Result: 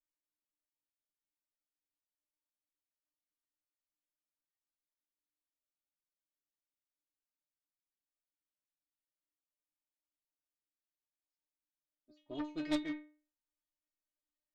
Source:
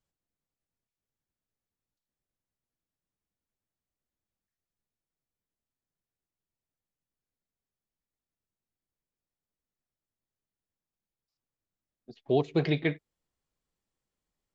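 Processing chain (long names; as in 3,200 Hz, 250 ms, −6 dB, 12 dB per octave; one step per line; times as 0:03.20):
stiff-string resonator 300 Hz, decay 0.4 s, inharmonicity 0.002
harmonic generator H 4 −8 dB, 6 −11 dB, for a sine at −28.5 dBFS
level +3.5 dB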